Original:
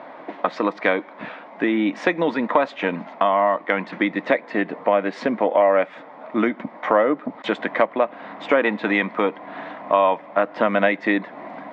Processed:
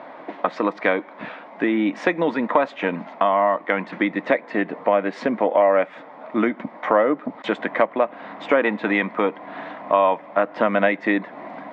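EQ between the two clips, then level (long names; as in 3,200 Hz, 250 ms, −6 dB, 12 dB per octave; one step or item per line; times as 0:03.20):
dynamic equaliser 4,500 Hz, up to −4 dB, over −40 dBFS, Q 1.1
0.0 dB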